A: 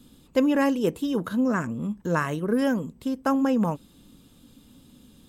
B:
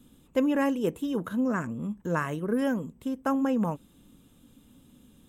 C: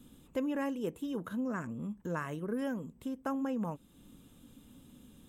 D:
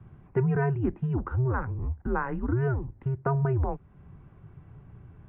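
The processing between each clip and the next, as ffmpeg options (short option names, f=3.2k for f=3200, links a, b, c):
-af "equalizer=f=4.6k:w=3:g=-11,volume=-3.5dB"
-af "acompressor=threshold=-47dB:ratio=1.5"
-af "equalizer=f=130:t=o:w=1.1:g=3.5,highpass=f=170:t=q:w=0.5412,highpass=f=170:t=q:w=1.307,lowpass=f=2.1k:t=q:w=0.5176,lowpass=f=2.1k:t=q:w=0.7071,lowpass=f=2.1k:t=q:w=1.932,afreqshift=-130,volume=8.5dB"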